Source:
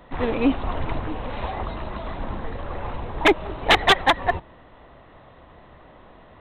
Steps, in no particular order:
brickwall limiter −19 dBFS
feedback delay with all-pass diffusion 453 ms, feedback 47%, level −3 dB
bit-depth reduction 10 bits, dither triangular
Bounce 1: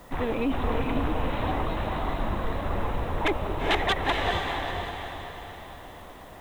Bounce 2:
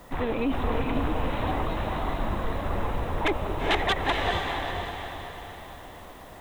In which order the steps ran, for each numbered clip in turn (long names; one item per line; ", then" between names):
brickwall limiter, then feedback delay with all-pass diffusion, then bit-depth reduction
bit-depth reduction, then brickwall limiter, then feedback delay with all-pass diffusion